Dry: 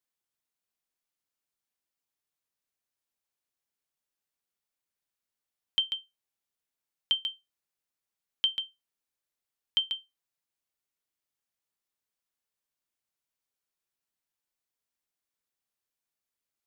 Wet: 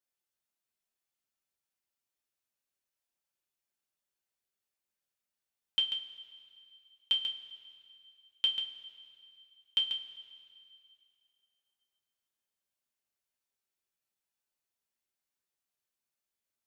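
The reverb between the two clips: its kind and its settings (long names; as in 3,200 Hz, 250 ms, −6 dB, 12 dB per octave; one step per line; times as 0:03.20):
coupled-rooms reverb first 0.24 s, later 2.5 s, from −18 dB, DRR −1 dB
level −5 dB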